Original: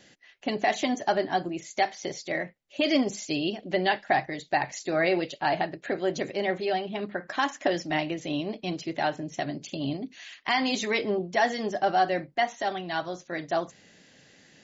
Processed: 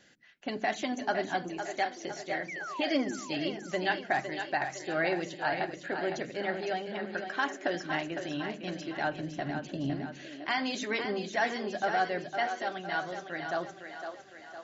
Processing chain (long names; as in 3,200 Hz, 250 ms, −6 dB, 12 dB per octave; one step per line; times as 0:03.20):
parametric band 1,500 Hz +8 dB 0.37 octaves
0:02.48–0:03.16: sound drawn into the spectrogram fall 310–2,400 Hz −33 dBFS
0:09.04–0:09.95: spectral tilt −2 dB per octave
echo with a time of its own for lows and highs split 310 Hz, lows 87 ms, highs 508 ms, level −7.5 dB
level −6.5 dB